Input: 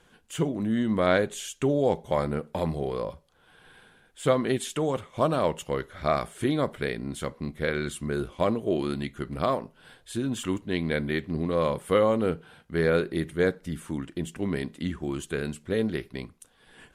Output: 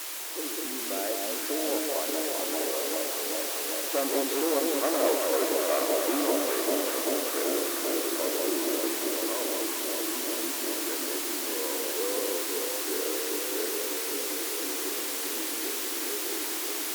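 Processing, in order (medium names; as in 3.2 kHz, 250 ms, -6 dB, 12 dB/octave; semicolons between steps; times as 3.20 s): Doppler pass-by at 5.21 s, 27 m/s, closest 21 m; tilt EQ -3.5 dB/octave; in parallel at +3 dB: compression, threshold -39 dBFS, peak gain reduction 21.5 dB; on the sum: saturation -21.5 dBFS, distortion -8 dB; word length cut 6-bit, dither triangular; brick-wall FIR high-pass 270 Hz; on a send: echo whose repeats swap between lows and highs 195 ms, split 1 kHz, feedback 90%, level -2 dB; on the sum: Opus 256 kbps 48 kHz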